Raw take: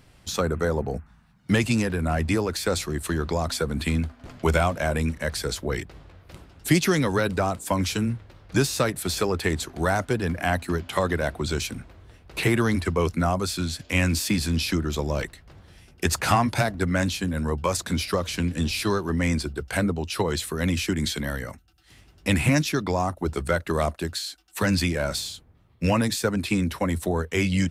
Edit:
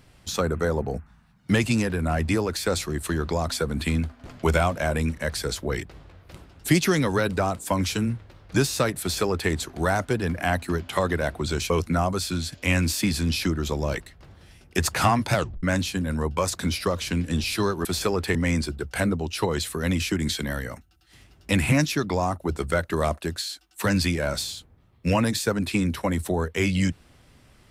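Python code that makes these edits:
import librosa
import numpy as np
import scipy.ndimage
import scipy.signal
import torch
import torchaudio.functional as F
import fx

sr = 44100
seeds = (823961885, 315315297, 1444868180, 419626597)

y = fx.edit(x, sr, fx.duplicate(start_s=9.01, length_s=0.5, to_s=19.12),
    fx.cut(start_s=11.7, length_s=1.27),
    fx.tape_stop(start_s=16.61, length_s=0.29), tone=tone)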